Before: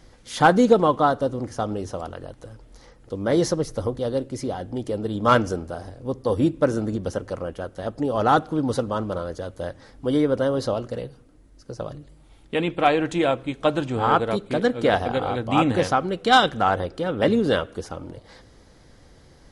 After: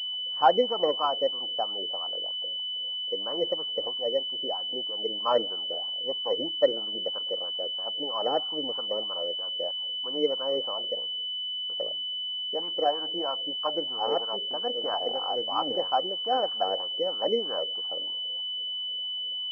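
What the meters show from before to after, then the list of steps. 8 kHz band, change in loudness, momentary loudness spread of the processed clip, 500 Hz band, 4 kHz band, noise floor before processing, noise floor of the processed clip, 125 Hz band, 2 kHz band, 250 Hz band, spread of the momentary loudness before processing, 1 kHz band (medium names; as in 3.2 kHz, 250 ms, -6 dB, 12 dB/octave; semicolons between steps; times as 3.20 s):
under -25 dB, -5.0 dB, 5 LU, -6.0 dB, +9.5 dB, -52 dBFS, -33 dBFS, under -25 dB, -18.5 dB, -16.5 dB, 16 LU, -7.5 dB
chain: high-pass 150 Hz 12 dB/octave; wah-wah 3.1 Hz 470–1100 Hz, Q 3.7; class-D stage that switches slowly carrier 3 kHz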